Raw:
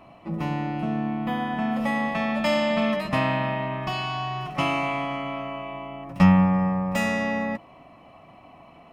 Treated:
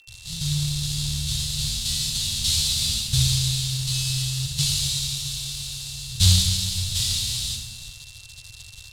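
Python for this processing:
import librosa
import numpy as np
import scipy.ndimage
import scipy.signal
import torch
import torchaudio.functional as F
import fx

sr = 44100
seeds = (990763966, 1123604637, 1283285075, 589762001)

p1 = fx.halfwave_hold(x, sr)
p2 = fx.low_shelf(p1, sr, hz=100.0, db=-7.0)
p3 = fx.rev_fdn(p2, sr, rt60_s=1.2, lf_ratio=0.95, hf_ratio=0.5, size_ms=41.0, drr_db=-0.5)
p4 = fx.quant_dither(p3, sr, seeds[0], bits=6, dither='none')
p5 = p4 + fx.room_early_taps(p4, sr, ms=(55, 78), db=(-15.5, -12.5), dry=0)
p6 = p5 + 10.0 ** (-38.0 / 20.0) * np.sin(2.0 * np.pi * 2700.0 * np.arange(len(p5)) / sr)
p7 = scipy.signal.sosfilt(scipy.signal.cheby1(4, 1.0, [110.0, 3700.0], 'bandstop', fs=sr, output='sos'), p6)
p8 = fx.peak_eq(p7, sr, hz=5800.0, db=-4.5, octaves=0.54)
p9 = fx.quant_companded(p8, sr, bits=4)
p10 = p8 + (p9 * 10.0 ** (-3.5 / 20.0))
p11 = scipy.signal.sosfilt(scipy.signal.butter(2, 7800.0, 'lowpass', fs=sr, output='sos'), p10)
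p12 = fx.dmg_crackle(p11, sr, seeds[1], per_s=190.0, level_db=-57.0)
y = p12 * 10.0 ** (4.5 / 20.0)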